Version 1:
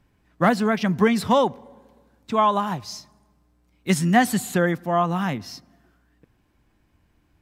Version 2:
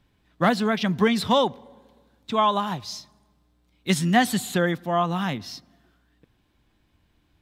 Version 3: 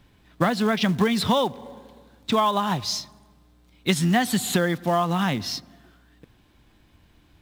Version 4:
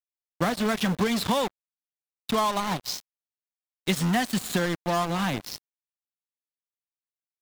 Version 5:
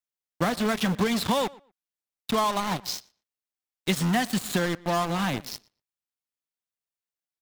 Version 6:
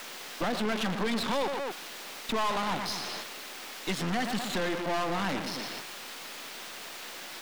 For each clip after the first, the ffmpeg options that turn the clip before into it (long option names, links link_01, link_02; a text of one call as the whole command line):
ffmpeg -i in.wav -af "equalizer=frequency=3600:width=2.2:gain=9,volume=-2dB" out.wav
ffmpeg -i in.wav -filter_complex "[0:a]asplit=2[link_01][link_02];[link_02]acrusher=bits=3:mode=log:mix=0:aa=0.000001,volume=-6dB[link_03];[link_01][link_03]amix=inputs=2:normalize=0,acompressor=threshold=-23dB:ratio=5,volume=4.5dB" out.wav
ffmpeg -i in.wav -af "acrusher=bits=3:mix=0:aa=0.5,volume=-4dB" out.wav
ffmpeg -i in.wav -filter_complex "[0:a]asplit=2[link_01][link_02];[link_02]adelay=118,lowpass=frequency=3300:poles=1,volume=-22dB,asplit=2[link_03][link_04];[link_04]adelay=118,lowpass=frequency=3300:poles=1,volume=0.18[link_05];[link_01][link_03][link_05]amix=inputs=3:normalize=0" out.wav
ffmpeg -i in.wav -filter_complex "[0:a]aeval=exprs='val(0)+0.5*0.0668*sgn(val(0))':channel_layout=same,acrossover=split=190 5100:gain=0.0631 1 0.224[link_01][link_02][link_03];[link_01][link_02][link_03]amix=inputs=3:normalize=0,aeval=exprs='(tanh(20*val(0)+0.6)-tanh(0.6))/20':channel_layout=same" out.wav